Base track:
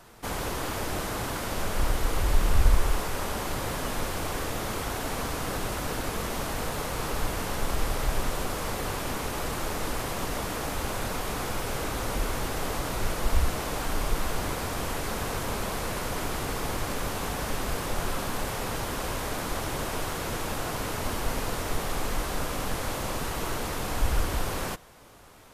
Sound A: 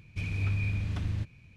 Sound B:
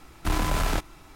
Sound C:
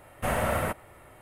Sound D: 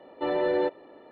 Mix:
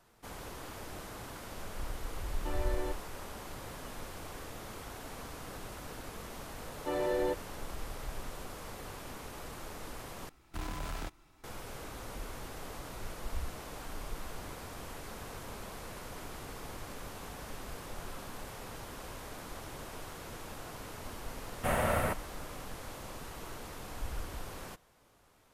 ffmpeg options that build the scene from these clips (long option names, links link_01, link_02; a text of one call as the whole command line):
ffmpeg -i bed.wav -i cue0.wav -i cue1.wav -i cue2.wav -i cue3.wav -filter_complex "[4:a]asplit=2[link_01][link_02];[0:a]volume=-13.5dB[link_03];[link_01]equalizer=frequency=480:width=6.3:gain=-9.5[link_04];[link_03]asplit=2[link_05][link_06];[link_05]atrim=end=10.294[link_07];[2:a]atrim=end=1.15,asetpts=PTS-STARTPTS,volume=-14dB[link_08];[link_06]atrim=start=11.436[link_09];[link_04]atrim=end=1.11,asetpts=PTS-STARTPTS,volume=-11dB,afade=type=in:duration=0.004:curve=hsin,afade=type=out:start_time=1.106:duration=0.004:curve=hsin,adelay=2240[link_10];[link_02]atrim=end=1.11,asetpts=PTS-STARTPTS,volume=-6.5dB,afade=type=in:duration=0.004:curve=hsin,afade=type=out:start_time=1.106:duration=0.004:curve=hsin,adelay=6650[link_11];[3:a]atrim=end=1.21,asetpts=PTS-STARTPTS,volume=-3dB,afade=type=in:duration=0.004:curve=hsin,afade=type=out:start_time=1.206:duration=0.004:curve=hsin,adelay=21410[link_12];[link_07][link_08]acrossfade=duration=0.004:curve1=hsin:curve2=hsin[link_13];[link_13][link_09]acrossfade=duration=0.004:curve1=hsin:curve2=hsin[link_14];[link_14][link_10][link_11][link_12]amix=inputs=4:normalize=0" out.wav